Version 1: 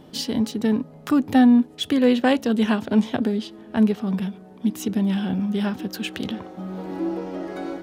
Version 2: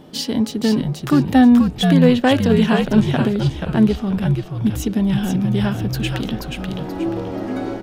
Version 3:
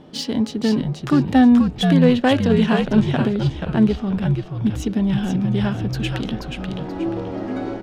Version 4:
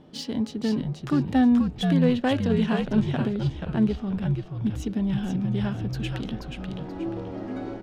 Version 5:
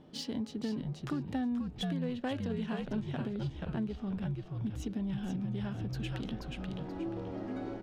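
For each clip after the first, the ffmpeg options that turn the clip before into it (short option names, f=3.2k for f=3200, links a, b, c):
-filter_complex "[0:a]asplit=5[a][b][c][d][e];[b]adelay=481,afreqshift=-74,volume=-4.5dB[f];[c]adelay=962,afreqshift=-148,volume=-15dB[g];[d]adelay=1443,afreqshift=-222,volume=-25.4dB[h];[e]adelay=1924,afreqshift=-296,volume=-35.9dB[i];[a][f][g][h][i]amix=inputs=5:normalize=0,volume=3.5dB"
-af "adynamicsmooth=sensitivity=2:basefreq=6.7k,volume=-1.5dB"
-af "lowshelf=f=210:g=3.5,volume=-8dB"
-af "acompressor=threshold=-28dB:ratio=4,volume=-5dB"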